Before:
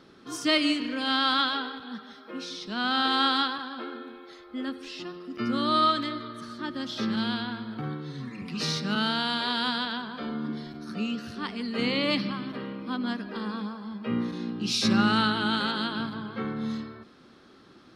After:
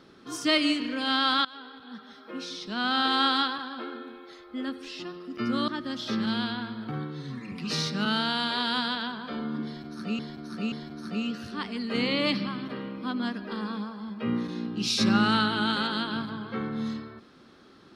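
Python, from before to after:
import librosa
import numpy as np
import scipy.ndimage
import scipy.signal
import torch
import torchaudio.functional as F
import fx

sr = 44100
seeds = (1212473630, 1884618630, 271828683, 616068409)

y = fx.edit(x, sr, fx.fade_in_from(start_s=1.45, length_s=0.84, floor_db=-22.5),
    fx.cut(start_s=5.68, length_s=0.9),
    fx.repeat(start_s=10.56, length_s=0.53, count=3), tone=tone)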